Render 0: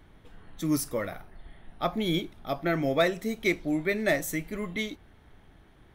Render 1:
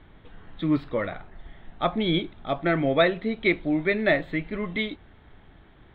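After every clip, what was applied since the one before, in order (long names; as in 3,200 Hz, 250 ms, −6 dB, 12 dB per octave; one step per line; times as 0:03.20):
elliptic low-pass filter 3,800 Hz, stop band 40 dB
level +4.5 dB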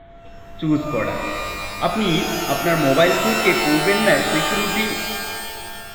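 steady tone 680 Hz −48 dBFS
reverb with rising layers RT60 2.2 s, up +12 semitones, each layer −2 dB, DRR 4 dB
level +4 dB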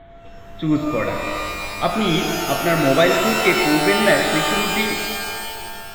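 convolution reverb, pre-delay 110 ms, DRR 10.5 dB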